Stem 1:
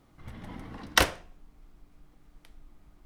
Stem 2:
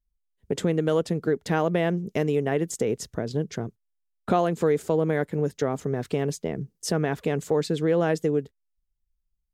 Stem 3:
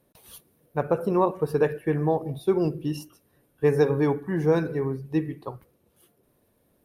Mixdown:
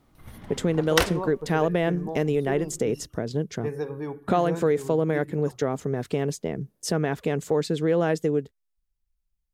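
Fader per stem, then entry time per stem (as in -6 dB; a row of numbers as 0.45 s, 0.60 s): -0.5 dB, 0.0 dB, -10.5 dB; 0.00 s, 0.00 s, 0.00 s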